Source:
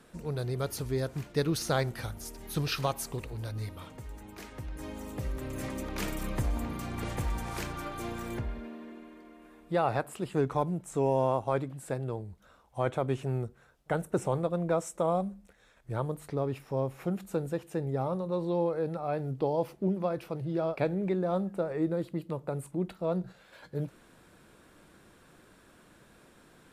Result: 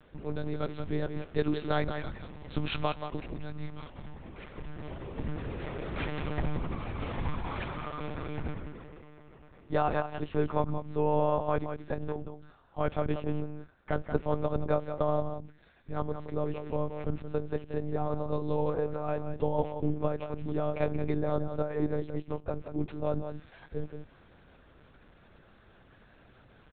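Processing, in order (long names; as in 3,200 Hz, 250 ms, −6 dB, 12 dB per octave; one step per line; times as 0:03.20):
on a send: single-tap delay 178 ms −8.5 dB
on the sum: one-pitch LPC vocoder at 8 kHz 150 Hz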